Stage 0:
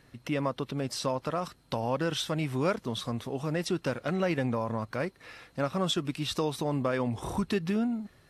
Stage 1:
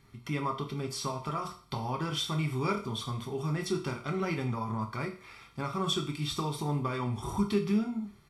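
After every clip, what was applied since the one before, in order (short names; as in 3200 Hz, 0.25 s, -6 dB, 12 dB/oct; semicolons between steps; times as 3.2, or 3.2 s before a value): comb 0.9 ms, depth 69%; on a send at -1 dB: reverb RT60 0.45 s, pre-delay 3 ms; on the sum: gain -5 dB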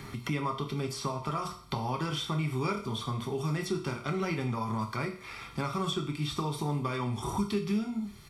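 three-band squash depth 70%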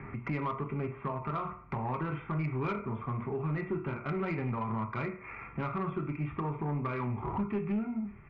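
steep low-pass 2500 Hz 72 dB/oct; soft clip -25 dBFS, distortion -17 dB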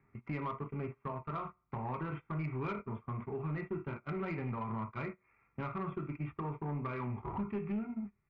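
gate -36 dBFS, range -22 dB; gain -4.5 dB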